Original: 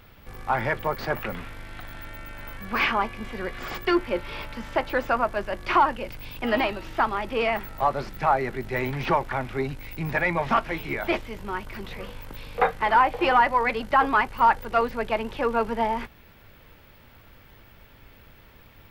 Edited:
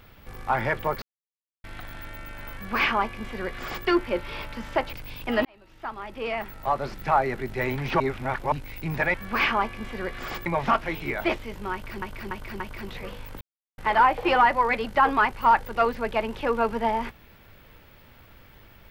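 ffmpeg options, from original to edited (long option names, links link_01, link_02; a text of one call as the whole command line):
ffmpeg -i in.wav -filter_complex "[0:a]asplit=14[link_01][link_02][link_03][link_04][link_05][link_06][link_07][link_08][link_09][link_10][link_11][link_12][link_13][link_14];[link_01]atrim=end=1.02,asetpts=PTS-STARTPTS,afade=type=out:start_time=1.016:duration=0.004:curve=hsin[link_15];[link_02]atrim=start=1.02:end=1.64,asetpts=PTS-STARTPTS,volume=0[link_16];[link_03]atrim=start=1.64:end=4.932,asetpts=PTS-STARTPTS,afade=type=in:duration=0.004:curve=hsin[link_17];[link_04]atrim=start=6.078:end=6.6,asetpts=PTS-STARTPTS,afade=type=out:start_time=0.518:duration=0.004:curve=hsin[link_18];[link_05]atrim=start=6.6:end=9.152,asetpts=PTS-STARTPTS,afade=type=in:duration=1.6[link_19];[link_06]atrim=start=9.148:end=9.672,asetpts=PTS-STARTPTS,areverse[link_20];[link_07]atrim=start=9.668:end=10.292[link_21];[link_08]atrim=start=2.538:end=3.862[link_22];[link_09]atrim=start=10.288:end=11.852[link_23];[link_10]atrim=start=11.558:end=11.852[link_24];[link_11]atrim=start=11.558:end=11.852[link_25];[link_12]atrim=start=11.558:end=12.37,asetpts=PTS-STARTPTS,afade=type=out:start_time=0.808:duration=0.004:curve=hsin[link_26];[link_13]atrim=start=12.37:end=12.74,asetpts=PTS-STARTPTS,volume=0[link_27];[link_14]atrim=start=12.74,asetpts=PTS-STARTPTS,afade=type=in:duration=0.004:curve=hsin[link_28];[link_15][link_16][link_17]concat=n=3:v=0:a=1[link_29];[link_18][link_19]concat=n=2:v=0:a=1[link_30];[link_29][link_30]acrossfade=duration=0.004:curve1=hsin:curve2=hsin[link_31];[link_31][link_20]acrossfade=duration=0.004:curve1=hsin:curve2=hsin[link_32];[link_32][link_21]acrossfade=duration=0.004:curve1=hsin:curve2=hsin[link_33];[link_33][link_22]acrossfade=duration=0.004:curve1=hsin:curve2=hsin[link_34];[link_34][link_23]acrossfade=duration=0.004:curve1=hsin:curve2=hsin[link_35];[link_35][link_24]acrossfade=duration=0.004:curve1=hsin:curve2=hsin[link_36];[link_36][link_25]acrossfade=duration=0.004:curve1=hsin:curve2=hsin[link_37];[link_26][link_27][link_28]concat=n=3:v=0:a=1[link_38];[link_37][link_38]acrossfade=duration=0.004:curve1=hsin:curve2=hsin" out.wav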